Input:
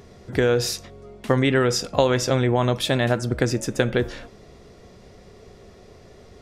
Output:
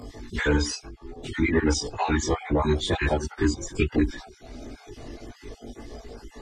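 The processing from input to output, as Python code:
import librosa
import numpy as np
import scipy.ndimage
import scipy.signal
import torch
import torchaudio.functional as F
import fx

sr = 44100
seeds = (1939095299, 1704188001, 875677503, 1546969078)

y = fx.spec_dropout(x, sr, seeds[0], share_pct=37)
y = fx.pitch_keep_formants(y, sr, semitones=-8.5)
y = fx.chorus_voices(y, sr, voices=6, hz=0.45, base_ms=19, depth_ms=2.3, mix_pct=55)
y = fx.band_squash(y, sr, depth_pct=40)
y = y * 10.0 ** (3.0 / 20.0)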